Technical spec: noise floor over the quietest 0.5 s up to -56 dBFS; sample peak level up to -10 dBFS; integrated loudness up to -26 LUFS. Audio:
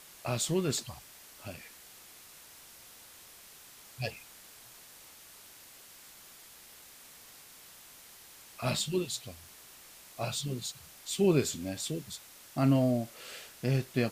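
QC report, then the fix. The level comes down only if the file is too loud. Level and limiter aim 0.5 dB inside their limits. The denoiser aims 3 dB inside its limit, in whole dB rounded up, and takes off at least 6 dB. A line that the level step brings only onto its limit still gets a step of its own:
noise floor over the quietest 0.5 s -54 dBFS: fail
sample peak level -13.5 dBFS: pass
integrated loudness -32.5 LUFS: pass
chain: noise reduction 6 dB, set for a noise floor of -54 dBFS

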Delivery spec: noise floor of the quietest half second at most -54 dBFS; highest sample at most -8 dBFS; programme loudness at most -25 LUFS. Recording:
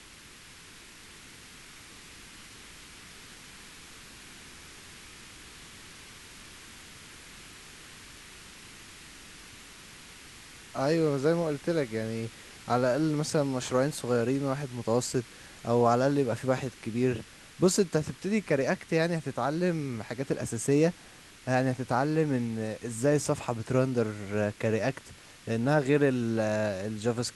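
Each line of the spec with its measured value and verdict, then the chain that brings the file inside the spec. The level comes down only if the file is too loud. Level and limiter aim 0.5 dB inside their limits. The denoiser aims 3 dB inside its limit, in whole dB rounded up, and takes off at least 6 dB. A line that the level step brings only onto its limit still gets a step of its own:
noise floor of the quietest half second -52 dBFS: fail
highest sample -11.5 dBFS: pass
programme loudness -29.0 LUFS: pass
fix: noise reduction 6 dB, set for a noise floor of -52 dBFS

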